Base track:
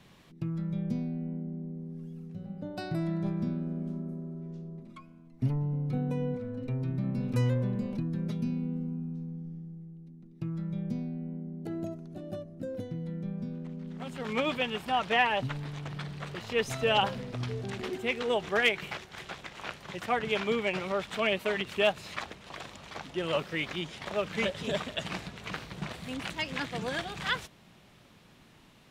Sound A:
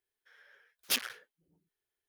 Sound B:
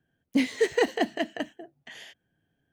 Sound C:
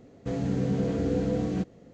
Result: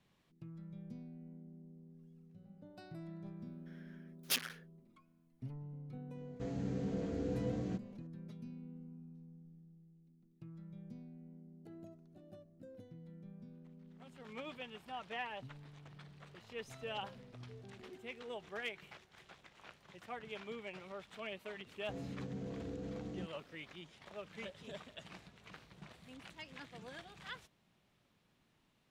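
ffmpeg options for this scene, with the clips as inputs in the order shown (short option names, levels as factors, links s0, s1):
-filter_complex "[3:a]asplit=2[s0][s1];[0:a]volume=0.141[s2];[s1]alimiter=limit=0.0794:level=0:latency=1:release=61[s3];[1:a]atrim=end=2.08,asetpts=PTS-STARTPTS,volume=0.596,afade=t=in:d=0.004:c=hsin,afade=t=out:st=2.076:d=0.004:c=hsin,adelay=3400[s4];[s0]atrim=end=1.93,asetpts=PTS-STARTPTS,volume=0.282,afade=t=in:d=0.004:c=hsin,afade=t=out:st=1.926:d=0.004:c=hsin,adelay=6140[s5];[s3]atrim=end=1.93,asetpts=PTS-STARTPTS,volume=0.2,afade=t=in:d=0.004:c=hsin,afade=t=out:st=1.926:d=0.004:c=hsin,adelay=21630[s6];[s2][s4][s5][s6]amix=inputs=4:normalize=0"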